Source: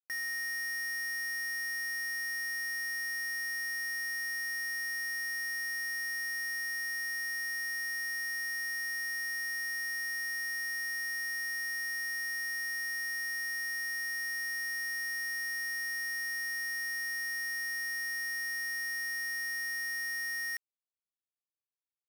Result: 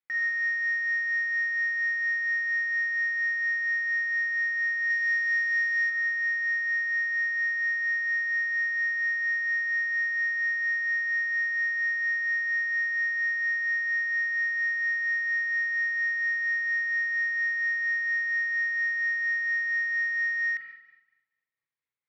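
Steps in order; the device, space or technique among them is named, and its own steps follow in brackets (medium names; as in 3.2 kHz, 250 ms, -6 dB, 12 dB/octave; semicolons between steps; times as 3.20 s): 4.90–5.90 s: tilt EQ +2 dB/octave; combo amplifier with spring reverb and tremolo (spring tank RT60 1.1 s, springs 35/43 ms, chirp 40 ms, DRR 3.5 dB; tremolo 4.3 Hz, depth 32%; cabinet simulation 98–3700 Hz, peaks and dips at 120 Hz +5 dB, 240 Hz -5 dB, 350 Hz -4 dB, 690 Hz -9 dB, 2.1 kHz +8 dB, 2.9 kHz -6 dB); trim +5.5 dB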